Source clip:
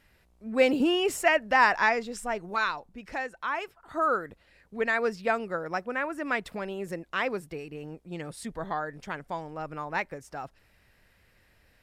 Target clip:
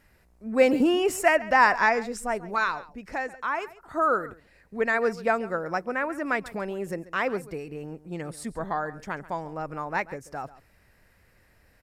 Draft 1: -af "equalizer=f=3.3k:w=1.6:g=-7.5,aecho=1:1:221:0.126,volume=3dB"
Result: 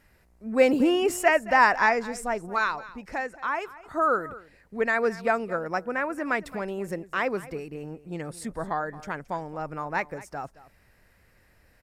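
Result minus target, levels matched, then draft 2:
echo 84 ms late
-af "equalizer=f=3.3k:w=1.6:g=-7.5,aecho=1:1:137:0.126,volume=3dB"

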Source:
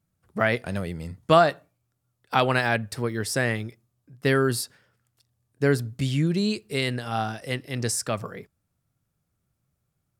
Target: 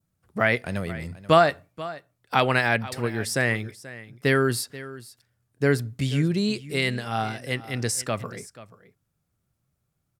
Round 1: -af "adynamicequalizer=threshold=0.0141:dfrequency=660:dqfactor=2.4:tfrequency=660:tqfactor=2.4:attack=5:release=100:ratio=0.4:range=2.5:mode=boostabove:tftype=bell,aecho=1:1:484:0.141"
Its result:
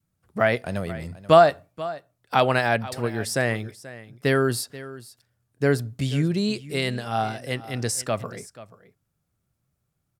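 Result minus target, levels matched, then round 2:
2000 Hz band -3.0 dB
-af "adynamicequalizer=threshold=0.0141:dfrequency=2100:dqfactor=2.4:tfrequency=2100:tqfactor=2.4:attack=5:release=100:ratio=0.4:range=2.5:mode=boostabove:tftype=bell,aecho=1:1:484:0.141"

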